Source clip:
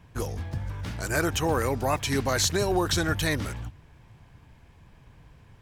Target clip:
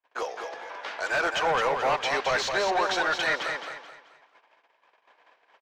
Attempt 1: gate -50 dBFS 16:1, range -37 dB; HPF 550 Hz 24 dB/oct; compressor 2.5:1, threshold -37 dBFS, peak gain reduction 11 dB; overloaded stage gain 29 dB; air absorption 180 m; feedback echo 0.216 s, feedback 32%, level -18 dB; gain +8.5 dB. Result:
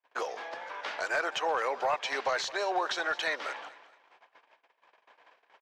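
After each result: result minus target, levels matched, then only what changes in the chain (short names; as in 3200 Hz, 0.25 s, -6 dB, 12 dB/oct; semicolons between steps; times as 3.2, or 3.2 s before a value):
compressor: peak gain reduction +11 dB; echo-to-direct -12 dB
remove: compressor 2.5:1, threshold -37 dBFS, peak gain reduction 11 dB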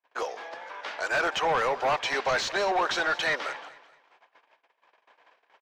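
echo-to-direct -12 dB
change: feedback echo 0.216 s, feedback 32%, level -6 dB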